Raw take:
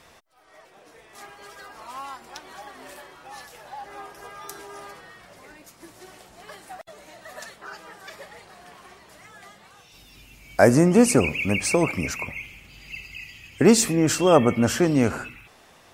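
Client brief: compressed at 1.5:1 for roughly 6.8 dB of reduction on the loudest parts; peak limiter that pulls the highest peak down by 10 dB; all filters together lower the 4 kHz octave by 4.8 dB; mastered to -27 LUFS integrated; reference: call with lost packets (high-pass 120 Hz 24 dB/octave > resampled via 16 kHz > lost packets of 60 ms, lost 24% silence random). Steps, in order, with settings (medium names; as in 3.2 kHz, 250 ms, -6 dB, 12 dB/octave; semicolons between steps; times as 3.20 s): peaking EQ 4 kHz -7 dB; compression 1.5:1, threshold -29 dBFS; peak limiter -18 dBFS; high-pass 120 Hz 24 dB/octave; resampled via 16 kHz; lost packets of 60 ms, lost 24% silence random; trim +6.5 dB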